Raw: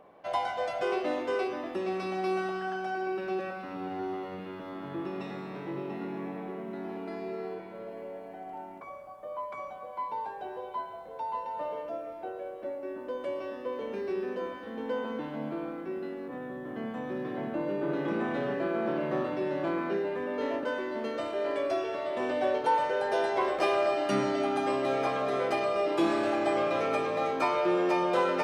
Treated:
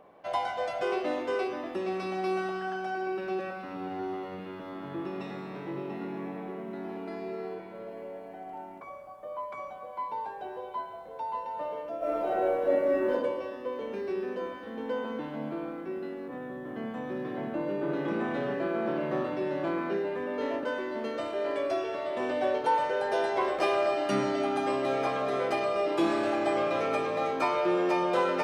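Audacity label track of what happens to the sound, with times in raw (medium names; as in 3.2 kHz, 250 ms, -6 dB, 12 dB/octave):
11.980000	13.110000	reverb throw, RT60 1.1 s, DRR -12 dB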